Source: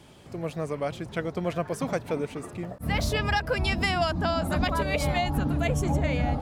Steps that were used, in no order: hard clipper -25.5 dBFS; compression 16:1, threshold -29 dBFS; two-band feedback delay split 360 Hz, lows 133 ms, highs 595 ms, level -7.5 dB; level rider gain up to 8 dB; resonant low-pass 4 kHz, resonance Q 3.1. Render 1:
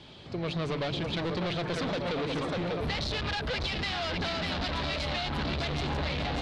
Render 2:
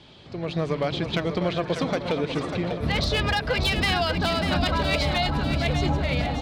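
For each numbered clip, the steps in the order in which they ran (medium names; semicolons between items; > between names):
two-band feedback delay > level rider > hard clipper > resonant low-pass > compression; compression > resonant low-pass > hard clipper > two-band feedback delay > level rider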